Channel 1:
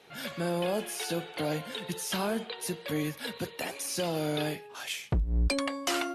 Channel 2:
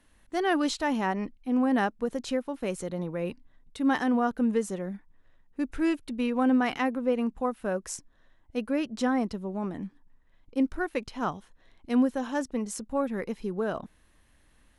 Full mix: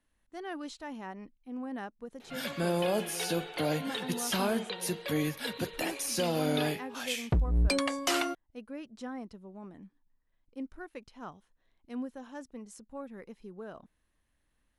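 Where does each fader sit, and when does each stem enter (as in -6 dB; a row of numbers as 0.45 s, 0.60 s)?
+1.0 dB, -14.0 dB; 2.20 s, 0.00 s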